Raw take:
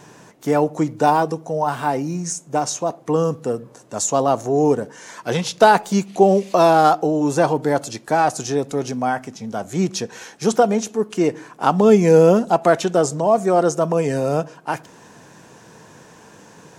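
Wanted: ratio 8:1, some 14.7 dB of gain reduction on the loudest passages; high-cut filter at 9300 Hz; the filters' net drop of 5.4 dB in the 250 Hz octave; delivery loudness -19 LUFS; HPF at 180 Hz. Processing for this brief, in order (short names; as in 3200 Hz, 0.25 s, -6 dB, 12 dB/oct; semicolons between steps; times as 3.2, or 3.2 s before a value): HPF 180 Hz; LPF 9300 Hz; bell 250 Hz -6 dB; compressor 8:1, threshold -24 dBFS; gain +10.5 dB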